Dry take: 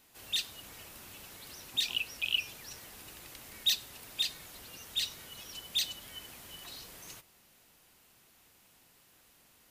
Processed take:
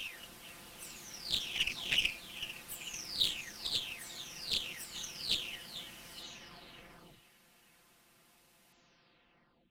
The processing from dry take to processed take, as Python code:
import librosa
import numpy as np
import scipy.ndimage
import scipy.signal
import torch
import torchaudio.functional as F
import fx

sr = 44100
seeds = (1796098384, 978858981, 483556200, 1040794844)

p1 = fx.spec_delay(x, sr, highs='early', ms=983)
p2 = fx.high_shelf(p1, sr, hz=9800.0, db=-9.0)
p3 = p2 + fx.echo_stepped(p2, sr, ms=445, hz=3600.0, octaves=-0.7, feedback_pct=70, wet_db=-11, dry=0)
p4 = fx.cheby_harmonics(p3, sr, harmonics=(7, 8), levels_db=(-25, -26), full_scale_db=-20.0)
p5 = fx.over_compress(p4, sr, threshold_db=-36.0, ratio=-1.0)
p6 = p4 + (p5 * 10.0 ** (-0.5 / 20.0))
y = fx.doppler_dist(p6, sr, depth_ms=0.36)